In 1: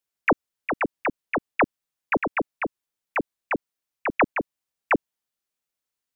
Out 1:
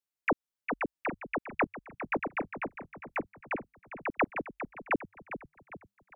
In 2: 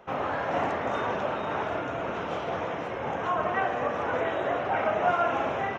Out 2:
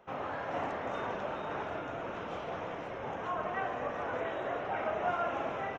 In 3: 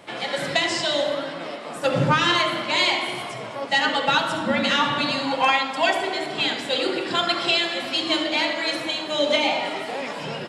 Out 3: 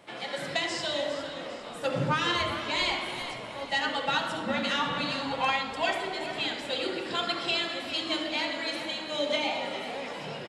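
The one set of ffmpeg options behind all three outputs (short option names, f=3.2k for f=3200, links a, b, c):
-filter_complex "[0:a]asplit=6[a][b][c][d][e][f];[b]adelay=404,afreqshift=-51,volume=-11dB[g];[c]adelay=808,afreqshift=-102,volume=-17.9dB[h];[d]adelay=1212,afreqshift=-153,volume=-24.9dB[i];[e]adelay=1616,afreqshift=-204,volume=-31.8dB[j];[f]adelay=2020,afreqshift=-255,volume=-38.7dB[k];[a][g][h][i][j][k]amix=inputs=6:normalize=0,volume=-8dB"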